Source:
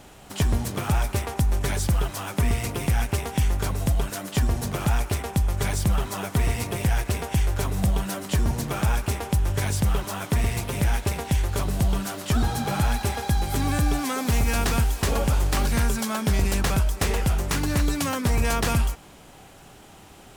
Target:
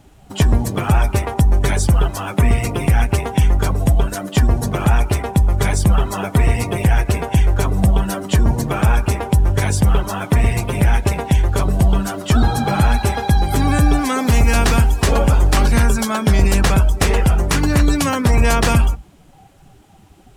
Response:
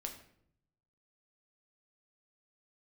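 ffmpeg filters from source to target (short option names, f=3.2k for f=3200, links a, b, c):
-filter_complex "[0:a]asplit=2[a][b];[1:a]atrim=start_sample=2205,afade=t=out:st=0.27:d=0.01,atrim=end_sample=12348[c];[b][c]afir=irnorm=-1:irlink=0,volume=-10.5dB[d];[a][d]amix=inputs=2:normalize=0,afftdn=nr=15:nf=-36,volume=7dB"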